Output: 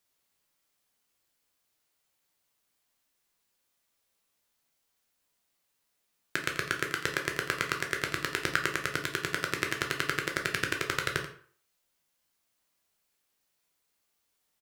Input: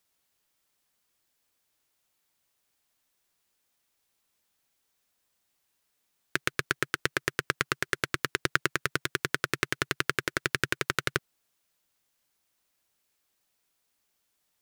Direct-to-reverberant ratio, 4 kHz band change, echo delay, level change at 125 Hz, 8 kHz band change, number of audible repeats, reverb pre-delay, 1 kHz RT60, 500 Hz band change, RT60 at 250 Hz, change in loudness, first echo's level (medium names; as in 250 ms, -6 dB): 2.0 dB, -1.0 dB, 85 ms, -2.0 dB, -1.5 dB, 1, 9 ms, 0.50 s, -1.0 dB, 0.45 s, -1.0 dB, -13.0 dB